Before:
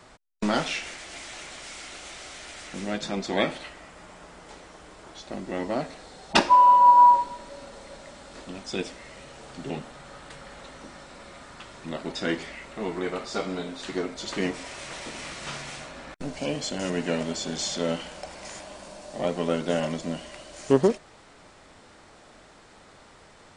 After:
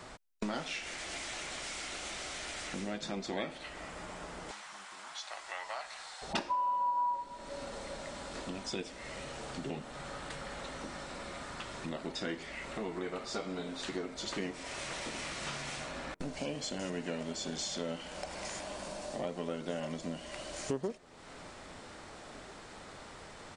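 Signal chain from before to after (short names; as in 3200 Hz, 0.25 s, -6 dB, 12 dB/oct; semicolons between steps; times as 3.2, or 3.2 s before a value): 4.51–6.22 HPF 860 Hz 24 dB/oct; compressor 3:1, threshold -41 dBFS, peak gain reduction 21 dB; outdoor echo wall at 280 m, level -24 dB; gain +2.5 dB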